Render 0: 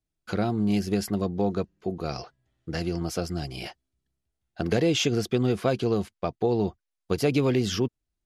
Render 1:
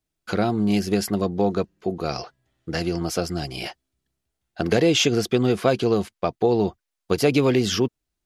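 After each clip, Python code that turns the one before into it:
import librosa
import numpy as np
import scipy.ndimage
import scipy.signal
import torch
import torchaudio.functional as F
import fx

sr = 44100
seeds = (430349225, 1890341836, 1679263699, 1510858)

y = fx.low_shelf(x, sr, hz=180.0, db=-6.5)
y = F.gain(torch.from_numpy(y), 6.0).numpy()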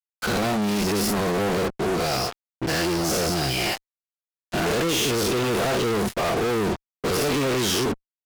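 y = fx.spec_dilate(x, sr, span_ms=120)
y = fx.fuzz(y, sr, gain_db=36.0, gate_db=-36.0)
y = F.gain(torch.from_numpy(y), -8.5).numpy()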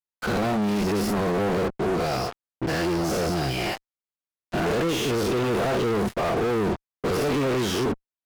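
y = fx.high_shelf(x, sr, hz=2800.0, db=-9.5)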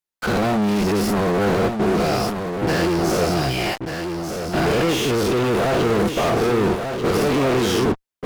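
y = x + 10.0 ** (-6.5 / 20.0) * np.pad(x, (int(1190 * sr / 1000.0), 0))[:len(x)]
y = F.gain(torch.from_numpy(y), 4.5).numpy()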